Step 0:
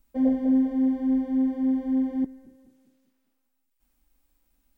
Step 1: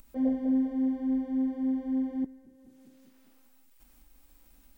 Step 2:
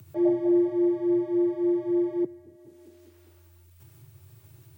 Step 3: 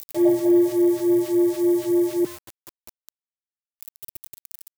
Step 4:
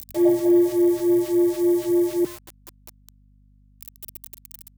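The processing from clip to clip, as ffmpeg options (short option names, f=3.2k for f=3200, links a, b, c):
-af "acompressor=mode=upward:threshold=-38dB:ratio=2.5,volume=-5dB"
-af "afreqshift=87,equalizer=f=170:t=o:w=1:g=6,volume=3.5dB"
-af "aeval=exprs='val(0)*gte(abs(val(0)),0.00631)':c=same,crystalizer=i=4:c=0,volume=4.5dB"
-af "aeval=exprs='val(0)+0.002*(sin(2*PI*50*n/s)+sin(2*PI*2*50*n/s)/2+sin(2*PI*3*50*n/s)/3+sin(2*PI*4*50*n/s)/4+sin(2*PI*5*50*n/s)/5)':c=same"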